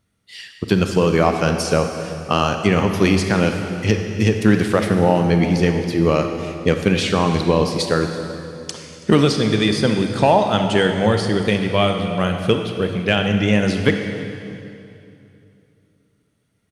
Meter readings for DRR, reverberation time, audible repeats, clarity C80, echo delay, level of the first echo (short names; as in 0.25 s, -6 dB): 5.0 dB, 2.8 s, 1, 6.5 dB, 0.329 s, -20.5 dB